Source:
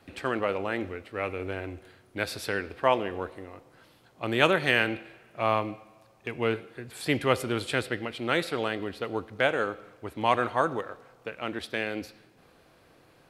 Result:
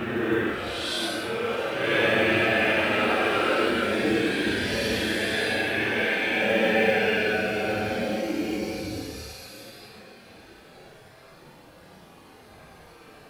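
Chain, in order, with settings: non-linear reverb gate 0.49 s rising, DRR -2 dB; Paulstretch 9.6×, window 0.05 s, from 11.54; modulation noise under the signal 34 dB; gain +6 dB

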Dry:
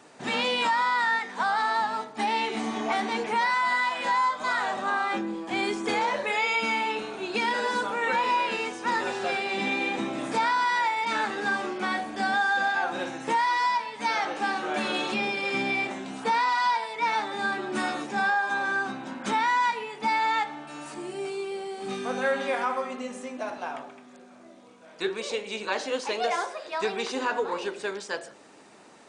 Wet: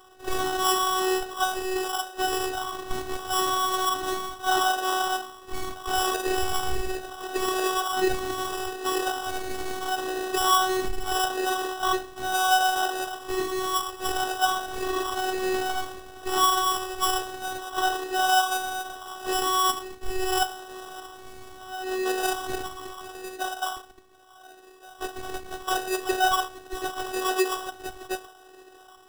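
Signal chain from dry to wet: LFO high-pass sine 0.76 Hz 390–2200 Hz; sample-rate reducer 2200 Hz, jitter 0%; robotiser 375 Hz; gain +1.5 dB

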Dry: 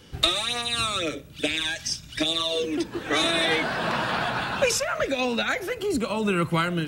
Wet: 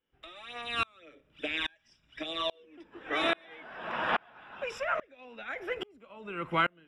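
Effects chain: polynomial smoothing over 25 samples; bell 110 Hz -13 dB 2.1 oct; dB-ramp tremolo swelling 1.2 Hz, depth 35 dB; gain +2 dB

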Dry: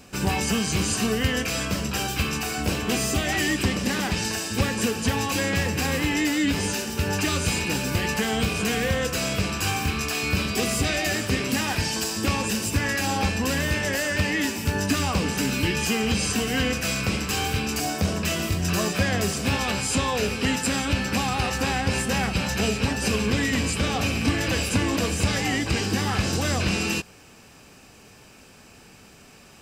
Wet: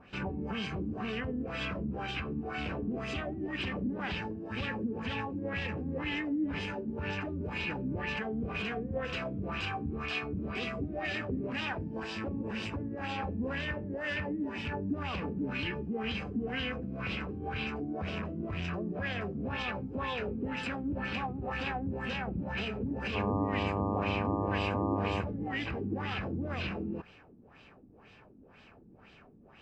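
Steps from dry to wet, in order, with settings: rattling part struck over -30 dBFS, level -24 dBFS; high shelf 5700 Hz -7.5 dB; limiter -20 dBFS, peak gain reduction 8.5 dB; LFO low-pass sine 2 Hz 260–3400 Hz; 23.14–25.2 buzz 100 Hz, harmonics 12, -25 dBFS -2 dB/oct; gain -8 dB

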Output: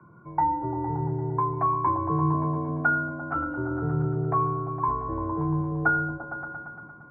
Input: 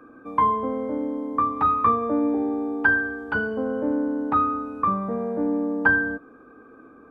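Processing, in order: repeats that get brighter 0.115 s, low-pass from 200 Hz, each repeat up 1 oct, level 0 dB; mistuned SSB -140 Hz 230–2100 Hz; gain -4 dB

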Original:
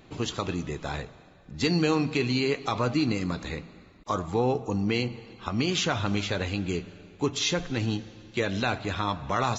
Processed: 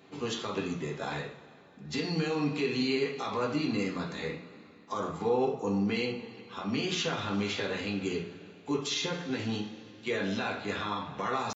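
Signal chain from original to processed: HPF 190 Hz 12 dB/oct; limiter -19.5 dBFS, peak gain reduction 8 dB; tempo 0.83×; reverb, pre-delay 3 ms, DRR -2 dB; gain -4.5 dB

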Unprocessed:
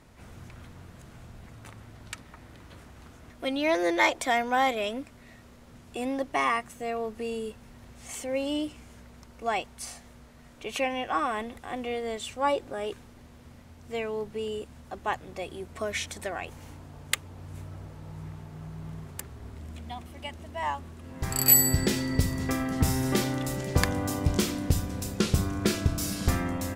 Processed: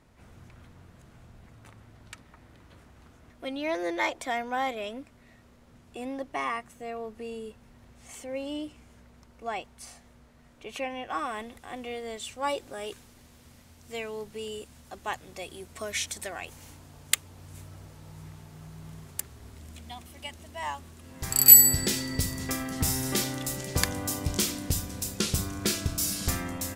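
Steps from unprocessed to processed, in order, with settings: high shelf 3000 Hz -2 dB, from 11.1 s +6 dB, from 12.43 s +12 dB; gain -5 dB

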